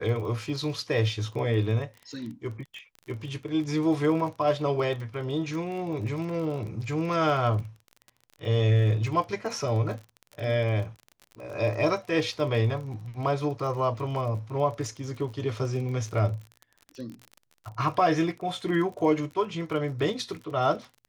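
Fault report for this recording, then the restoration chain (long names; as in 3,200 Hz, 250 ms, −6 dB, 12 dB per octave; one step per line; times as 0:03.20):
surface crackle 33 per second −35 dBFS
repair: click removal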